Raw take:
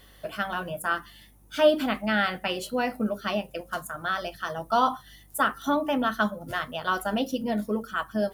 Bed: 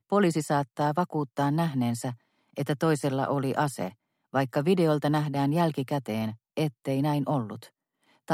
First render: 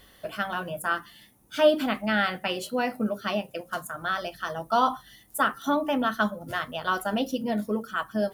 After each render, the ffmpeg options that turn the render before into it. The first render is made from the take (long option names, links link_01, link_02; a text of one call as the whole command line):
ffmpeg -i in.wav -af "bandreject=frequency=50:width_type=h:width=4,bandreject=frequency=100:width_type=h:width=4,bandreject=frequency=150:width_type=h:width=4" out.wav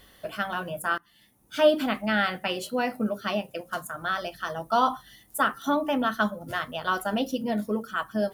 ffmpeg -i in.wav -filter_complex "[0:a]asplit=2[link_01][link_02];[link_01]atrim=end=0.98,asetpts=PTS-STARTPTS,afade=type=out:start_time=0.976:duration=0.004:curve=hsin:silence=0.0891251[link_03];[link_02]atrim=start=0.98,asetpts=PTS-STARTPTS,afade=type=in:duration=0.59:silence=0.0891251[link_04];[link_03][link_04]concat=n=2:v=0:a=1" out.wav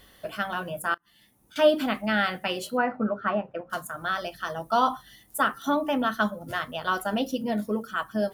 ffmpeg -i in.wav -filter_complex "[0:a]asettb=1/sr,asplit=3[link_01][link_02][link_03];[link_01]atrim=end=0.944[link_04];[link_02]atrim=start=0.94:end=1.56,asetpts=PTS-STARTPTS,afade=type=in:duration=0.004:curve=qsin,afade=type=out:start_time=0.616:duration=0.004:curve=qsin,acompressor=threshold=-49dB:ratio=16:attack=3.2:release=140:knee=1:detection=peak[link_05];[link_03]atrim=start=1.556[link_06];[link_04][link_05]acrossfade=duration=0.004:curve1=hsin:curve2=qsin[link_07];[link_07][link_06]acrossfade=duration=0.004:curve1=qsin:curve2=hsin,asettb=1/sr,asplit=3[link_08][link_09][link_10];[link_08]atrim=end=2.774[link_11];[link_09]atrim=start=2.77:end=3.7,asetpts=PTS-STARTPTS,afade=type=in:duration=0.004:curve=qsin,afade=type=out:start_time=0.926:duration=0.004:curve=qsin,lowpass=frequency=1400:width_type=q:width=2.1[link_12];[link_10]atrim=start=3.696[link_13];[link_11][link_12]acrossfade=duration=0.004:curve1=hsin:curve2=qsin[link_14];[link_14][link_13]acrossfade=duration=0.004:curve1=qsin:curve2=hsin" out.wav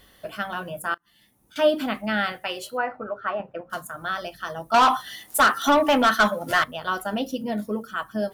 ffmpeg -i in.wav -filter_complex "[0:a]asettb=1/sr,asplit=3[link_01][link_02][link_03];[link_01]atrim=end=2.324[link_04];[link_02]atrim=start=2.32:end=3.4,asetpts=PTS-STARTPTS,afade=type=in:duration=0.004:curve=qsin,afade=type=out:start_time=1.076:duration=0.004:curve=qsin,equalizer=frequency=210:width=1.7:gain=-14.5[link_05];[link_03]atrim=start=3.396[link_06];[link_04][link_05]acrossfade=duration=0.004:curve1=hsin:curve2=qsin[link_07];[link_07][link_06]acrossfade=duration=0.004:curve1=qsin:curve2=hsin,asettb=1/sr,asplit=3[link_08][link_09][link_10];[link_08]atrim=end=4.744[link_11];[link_09]atrim=start=4.74:end=6.64,asetpts=PTS-STARTPTS,afade=type=in:duration=0.004:curve=qsin,afade=type=out:start_time=1.896:duration=0.004:curve=qsin,asplit=2[link_12][link_13];[link_13]highpass=frequency=720:poles=1,volume=20dB,asoftclip=type=tanh:threshold=-8.5dB[link_14];[link_12][link_14]amix=inputs=2:normalize=0,lowpass=frequency=7500:poles=1,volume=-6dB[link_15];[link_10]atrim=start=6.636[link_16];[link_11][link_15]acrossfade=duration=0.004:curve1=hsin:curve2=qsin[link_17];[link_17][link_16]acrossfade=duration=0.004:curve1=qsin:curve2=hsin" out.wav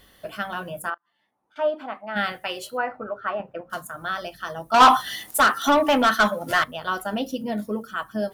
ffmpeg -i in.wav -filter_complex "[0:a]asplit=3[link_01][link_02][link_03];[link_01]afade=type=out:start_time=0.89:duration=0.02[link_04];[link_02]bandpass=frequency=890:width_type=q:width=1.5,afade=type=in:start_time=0.89:duration=0.02,afade=type=out:start_time=2.15:duration=0.02[link_05];[link_03]afade=type=in:start_time=2.15:duration=0.02[link_06];[link_04][link_05][link_06]amix=inputs=3:normalize=0,asettb=1/sr,asplit=3[link_07][link_08][link_09];[link_07]atrim=end=4.804[link_10];[link_08]atrim=start=4.8:end=5.31,asetpts=PTS-STARTPTS,afade=type=in:duration=0.004:curve=qsin,afade=type=out:start_time=0.506:duration=0.004:curve=qsin,acontrast=49[link_11];[link_09]atrim=start=5.306[link_12];[link_10][link_11]acrossfade=duration=0.004:curve1=hsin:curve2=qsin[link_13];[link_13][link_12]acrossfade=duration=0.004:curve1=qsin:curve2=hsin" out.wav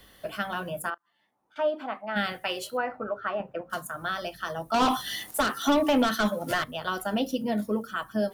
ffmpeg -i in.wav -filter_complex "[0:a]acrossover=split=110|540|2400[link_01][link_02][link_03][link_04];[link_03]acompressor=threshold=-29dB:ratio=6[link_05];[link_04]alimiter=level_in=1dB:limit=-24dB:level=0:latency=1:release=61,volume=-1dB[link_06];[link_01][link_02][link_05][link_06]amix=inputs=4:normalize=0" out.wav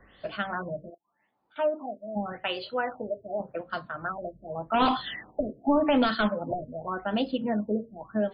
ffmpeg -i in.wav -af "afftfilt=real='re*lt(b*sr/1024,650*pow(5100/650,0.5+0.5*sin(2*PI*0.86*pts/sr)))':imag='im*lt(b*sr/1024,650*pow(5100/650,0.5+0.5*sin(2*PI*0.86*pts/sr)))':win_size=1024:overlap=0.75" out.wav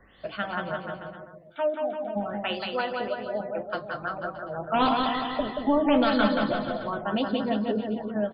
ffmpeg -i in.wav -af "aecho=1:1:180|342|487.8|619|737.1:0.631|0.398|0.251|0.158|0.1" out.wav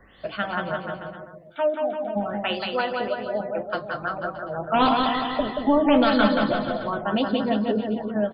ffmpeg -i in.wav -af "volume=3.5dB" out.wav